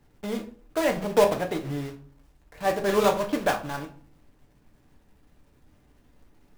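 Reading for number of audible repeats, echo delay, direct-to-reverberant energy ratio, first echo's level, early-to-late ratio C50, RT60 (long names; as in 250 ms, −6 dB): no echo audible, no echo audible, 3.0 dB, no echo audible, 12.5 dB, 0.45 s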